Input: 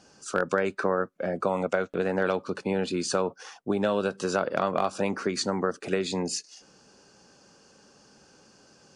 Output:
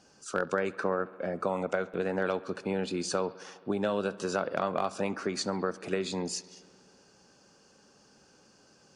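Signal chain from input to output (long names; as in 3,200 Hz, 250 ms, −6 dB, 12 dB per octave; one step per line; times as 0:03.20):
bucket-brigade delay 68 ms, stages 2,048, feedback 80%, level −21.5 dB
level −4 dB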